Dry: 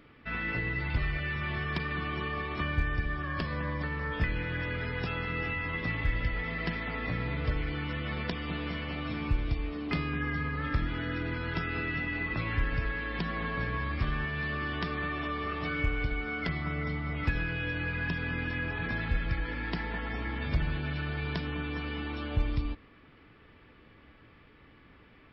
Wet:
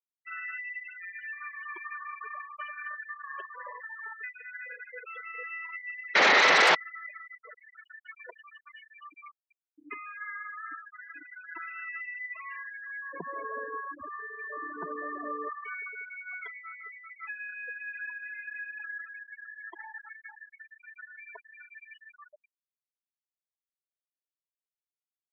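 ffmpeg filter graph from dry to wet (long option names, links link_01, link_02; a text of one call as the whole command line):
ffmpeg -i in.wav -filter_complex "[0:a]asettb=1/sr,asplit=3[link_01][link_02][link_03];[link_01]atrim=end=2.194[link_04];[link_02]atrim=start=2.19:end=4.19,asetpts=PTS-STARTPTS,afade=type=in:duration=0.004:curve=qsin,afade=type=out:start_time=1.996:duration=0.004:curve=qsin,acrusher=bits=6:dc=4:mix=0:aa=0.000001,aecho=1:1:457:0.0631,atrim=end_sample=88200[link_05];[link_03]atrim=start=4.186[link_06];[link_04][link_05]acrossfade=duration=0.004:curve1=hsin:curve2=qsin[link_07];[link_07][link_06]acrossfade=duration=0.004:curve1=qsin:curve2=hsin,asettb=1/sr,asplit=3[link_08][link_09][link_10];[link_08]atrim=end=6.154[link_11];[link_09]atrim=start=6.15:end=6.75,asetpts=PTS-STARTPTS,afade=type=in:duration=0.004:curve=qsin,afade=type=out:start_time=0.596:duration=0.004:curve=qsin,bandreject=frequency=60:width_type=h:width=6,bandreject=frequency=120:width_type=h:width=6,bandreject=frequency=180:width_type=h:width=6,bandreject=frequency=240:width_type=h:width=6,acontrast=73,aeval=exprs='0.224*sin(PI/2*6.31*val(0)/0.224)':channel_layout=same[link_12];[link_10]atrim=start=6.746[link_13];[link_11][link_12]acrossfade=duration=0.004:curve1=hsin:curve2=qsin[link_14];[link_14][link_13]acrossfade=duration=0.004:curve1=qsin:curve2=hsin,asettb=1/sr,asplit=3[link_15][link_16][link_17];[link_15]atrim=end=13.134[link_18];[link_16]atrim=start=13.13:end=15.49,asetpts=PTS-STARTPTS,afade=type=in:duration=0.004:curve=qsin,afade=type=out:start_time=2.356:duration=0.004:curve=qsin,tiltshelf=frequency=1400:gain=8.5,aeval=exprs='val(0)+0.00282*(sin(2*PI*50*n/s)+sin(2*PI*2*50*n/s)/2+sin(2*PI*3*50*n/s)/3+sin(2*PI*4*50*n/s)/4+sin(2*PI*5*50*n/s)/5)':channel_layout=same[link_19];[link_17]atrim=start=15.486[link_20];[link_18][link_19]acrossfade=duration=0.004:curve1=hsin:curve2=qsin[link_21];[link_21][link_20]acrossfade=duration=0.004:curve1=qsin:curve2=hsin,highpass=570,afftfilt=real='re*gte(hypot(re,im),0.0501)':imag='im*gte(hypot(re,im),0.0501)':win_size=1024:overlap=0.75,lowpass=frequency=1500:poles=1,volume=2dB" out.wav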